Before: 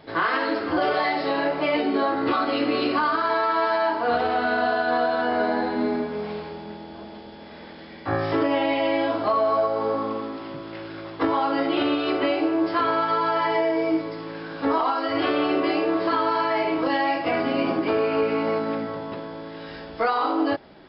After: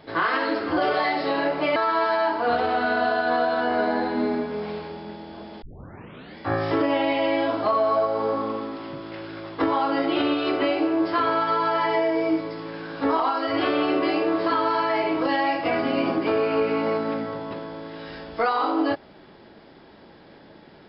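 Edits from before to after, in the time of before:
1.76–3.37 s: delete
7.23 s: tape start 0.75 s

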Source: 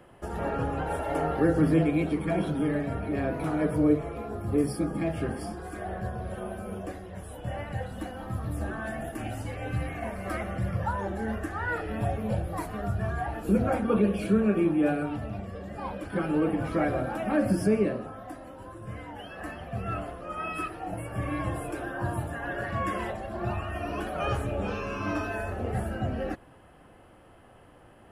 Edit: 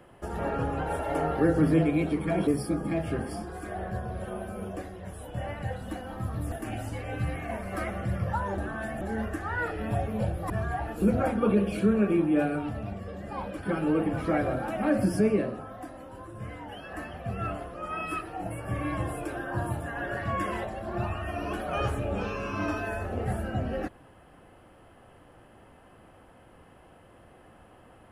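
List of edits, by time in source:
2.47–4.57 s: delete
8.62–9.05 s: move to 11.11 s
12.60–12.97 s: delete

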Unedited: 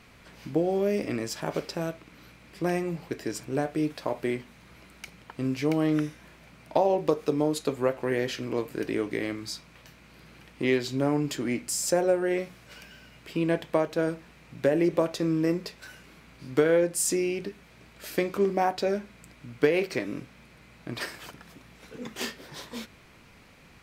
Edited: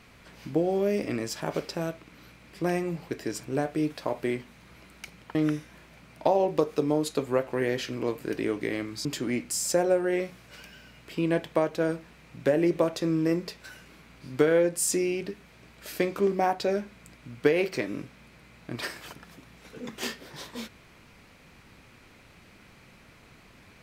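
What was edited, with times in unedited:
5.35–5.85 s: delete
9.55–11.23 s: delete

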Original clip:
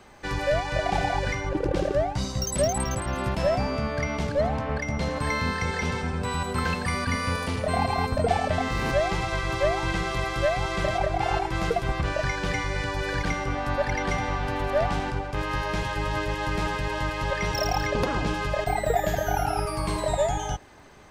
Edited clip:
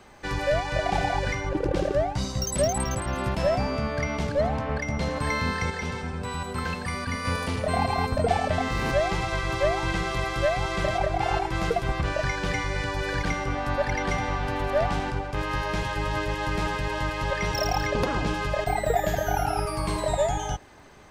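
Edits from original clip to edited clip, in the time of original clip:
5.70–7.25 s: gain -3.5 dB

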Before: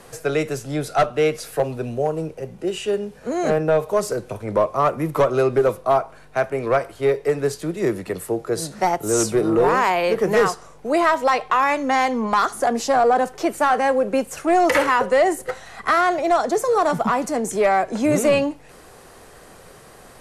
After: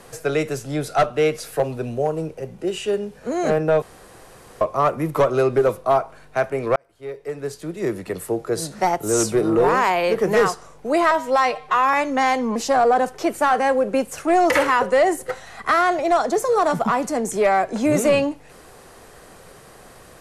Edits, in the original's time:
3.82–4.61 s: room tone
6.76–8.26 s: fade in
11.11–11.66 s: stretch 1.5×
12.28–12.75 s: delete

